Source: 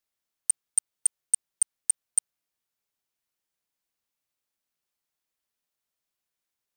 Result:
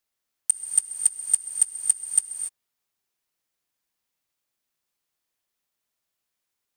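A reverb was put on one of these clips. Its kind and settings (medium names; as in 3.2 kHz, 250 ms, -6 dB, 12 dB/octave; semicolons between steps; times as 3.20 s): gated-style reverb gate 310 ms rising, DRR 4 dB; trim +2.5 dB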